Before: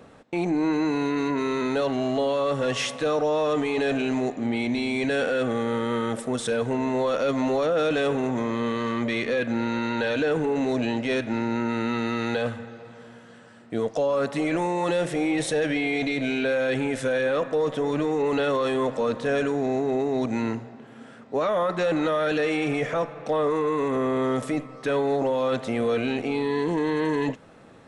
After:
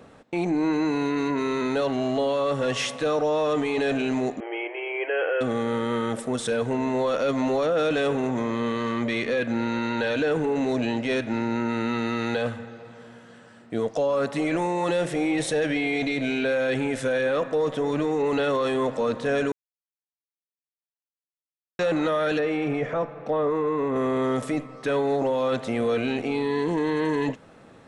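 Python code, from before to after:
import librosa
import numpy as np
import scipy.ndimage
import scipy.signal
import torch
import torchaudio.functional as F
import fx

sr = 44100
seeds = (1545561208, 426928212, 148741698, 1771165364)

y = fx.brickwall_bandpass(x, sr, low_hz=310.0, high_hz=3300.0, at=(4.4, 5.41))
y = fx.lowpass(y, sr, hz=1600.0, slope=6, at=(22.39, 23.96))
y = fx.edit(y, sr, fx.silence(start_s=19.52, length_s=2.27), tone=tone)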